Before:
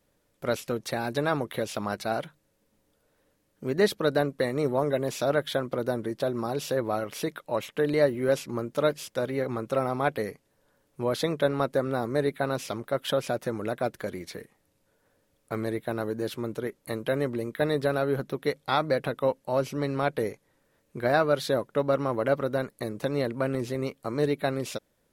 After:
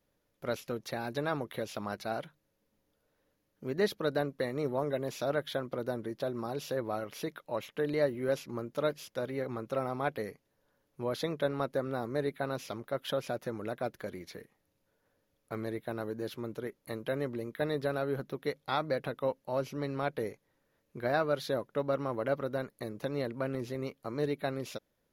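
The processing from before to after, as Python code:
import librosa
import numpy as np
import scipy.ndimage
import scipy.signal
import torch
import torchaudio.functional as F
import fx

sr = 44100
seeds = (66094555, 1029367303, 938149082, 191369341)

y = fx.peak_eq(x, sr, hz=8300.0, db=-14.0, octaves=0.22)
y = y * 10.0 ** (-6.5 / 20.0)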